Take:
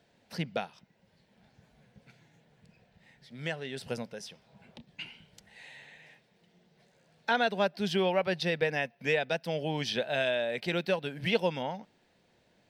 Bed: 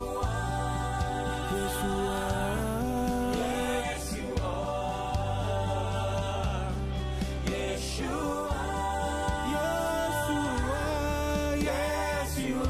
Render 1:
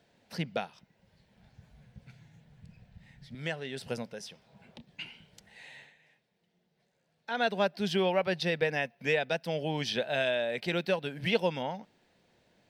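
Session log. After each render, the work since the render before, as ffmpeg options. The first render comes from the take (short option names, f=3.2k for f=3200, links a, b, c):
-filter_complex "[0:a]asettb=1/sr,asplit=3[a][b][c];[a]atrim=end=0.654[d];[b]atrim=start=0.65:end=3.35,asetpts=PTS-STARTPTS,afade=t=in:d=0.004:c=qsin,afade=t=out:st=2.696:d=0.004:c=qsin,asubboost=boost=10.5:cutoff=140[e];[c]atrim=start=3.346[f];[d][e]acrossfade=d=0.004:c1=hsin:c2=qsin[g];[g][f]acrossfade=d=0.004:c1=qsin:c2=hsin,asplit=3[h][i][j];[h]atrim=end=5.94,asetpts=PTS-STARTPTS,afade=t=out:st=5.79:d=0.15:silence=0.316228[k];[i]atrim=start=5.94:end=7.3,asetpts=PTS-STARTPTS,volume=-10dB[l];[j]atrim=start=7.3,asetpts=PTS-STARTPTS,afade=t=in:d=0.15:silence=0.316228[m];[k][l][m]concat=n=3:v=0:a=1"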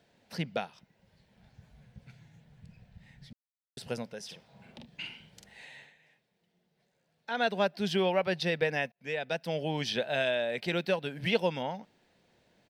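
-filter_complex "[0:a]asplit=3[a][b][c];[a]afade=t=out:st=4.28:d=0.02[d];[b]asplit=2[e][f];[f]adelay=45,volume=-2.5dB[g];[e][g]amix=inputs=2:normalize=0,afade=t=in:st=4.28:d=0.02,afade=t=out:st=5.64:d=0.02[h];[c]afade=t=in:st=5.64:d=0.02[i];[d][h][i]amix=inputs=3:normalize=0,asplit=4[j][k][l][m];[j]atrim=end=3.33,asetpts=PTS-STARTPTS,afade=t=out:st=3.326:d=0.004:c=hsin[n];[k]atrim=start=3.33:end=3.77,asetpts=PTS-STARTPTS,volume=0[o];[l]atrim=start=3.77:end=8.92,asetpts=PTS-STARTPTS,afade=t=in:d=0.004:c=hsin,afade=t=out:st=5.146:d=0.004:c=hsin[p];[m]atrim=start=8.92,asetpts=PTS-STARTPTS,afade=t=in:d=0.68:c=qsin[q];[n][o][p][q]concat=n=4:v=0:a=1"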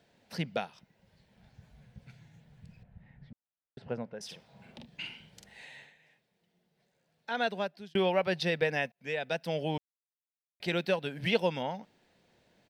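-filter_complex "[0:a]asettb=1/sr,asplit=3[a][b][c];[a]atrim=end=2.834[d];[b]atrim=start=2.83:end=4.21,asetpts=PTS-STARTPTS,afade=t=in:d=0.004:c=qsin,afade=t=out:st=1.376:d=0.004:c=qsin,lowpass=1.6k[e];[c]atrim=start=4.206[f];[d][e]acrossfade=d=0.004:c1=hsin:c2=qsin[g];[g][f]acrossfade=d=0.004:c1=qsin:c2=hsin,asplit=4[h][i][j][k];[h]atrim=end=7.95,asetpts=PTS-STARTPTS,afade=t=out:st=7.32:d=0.63[l];[i]atrim=start=7.95:end=9.78,asetpts=PTS-STARTPTS,afade=t=in:d=0.004:c=hsin,afade=t=out:st=1.826:d=0.004:c=hsin[m];[j]atrim=start=9.78:end=10.6,asetpts=PTS-STARTPTS,volume=0[n];[k]atrim=start=10.6,asetpts=PTS-STARTPTS,afade=t=in:d=0.004:c=hsin[o];[l][m][n][o]concat=n=4:v=0:a=1"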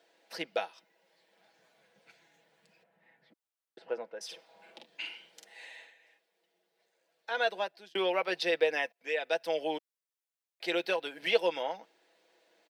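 -af "highpass=f=340:w=0.5412,highpass=f=340:w=1.3066,aecho=1:1:6.1:0.52"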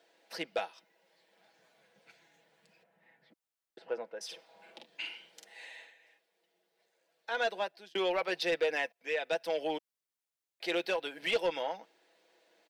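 -af "asoftclip=type=tanh:threshold=-22.5dB"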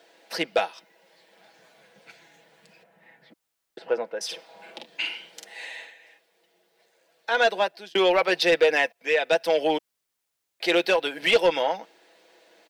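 -af "volume=11dB"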